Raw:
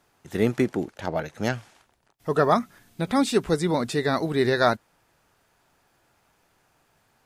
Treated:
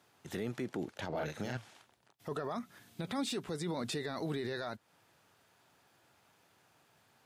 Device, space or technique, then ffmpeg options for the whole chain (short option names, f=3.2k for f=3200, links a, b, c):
broadcast voice chain: -filter_complex "[0:a]asettb=1/sr,asplit=3[a][b][c];[a]atrim=end=1.094[d];[b]atrim=start=1.09:end=1.57,asetpts=PTS-STARTPTS,afade=t=in:d=0.004:c=qsin,afade=t=out:st=0.476:d=0.004:c=qsin,asplit=2[e][f];[f]adelay=40,volume=-2.5dB[g];[e][g]amix=inputs=2:normalize=0,atrim=end_sample=21168[h];[c]atrim=start=1.566[i];[d][h]acrossfade=d=0.004:c1=hsin:c2=qsin[j];[j][i]acrossfade=d=0.004:c1=qsin:c2=hsin,highpass=f=83:w=0.5412,highpass=f=83:w=1.3066,deesser=0.55,acompressor=threshold=-27dB:ratio=4,equalizer=f=3.5k:t=o:w=0.81:g=3.5,alimiter=level_in=1.5dB:limit=-24dB:level=0:latency=1:release=13,volume=-1.5dB,volume=-3dB"